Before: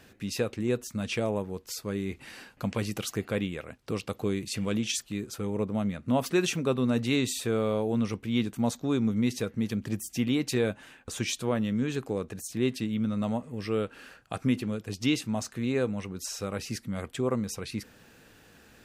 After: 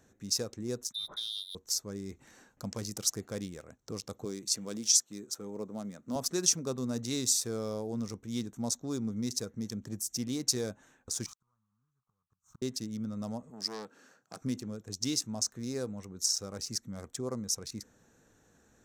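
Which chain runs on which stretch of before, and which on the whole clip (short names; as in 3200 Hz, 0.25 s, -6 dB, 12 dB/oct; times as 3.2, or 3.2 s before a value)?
0.92–1.55 bell 1400 Hz -10.5 dB 2.7 oct + inverted band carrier 3800 Hz
4.25–6.16 HPF 200 Hz + companded quantiser 8-bit
11.26–12.62 block floating point 3-bit + EQ curve 150 Hz 0 dB, 320 Hz -21 dB, 640 Hz -17 dB, 1200 Hz +8 dB, 1800 Hz -14 dB + flipped gate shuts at -33 dBFS, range -37 dB
13.5–14.41 HPF 150 Hz 24 dB/oct + bell 4900 Hz +8 dB 0.31 oct + core saturation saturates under 1500 Hz
whole clip: Wiener smoothing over 9 samples; resonant high shelf 3900 Hz +12.5 dB, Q 3; gain -8 dB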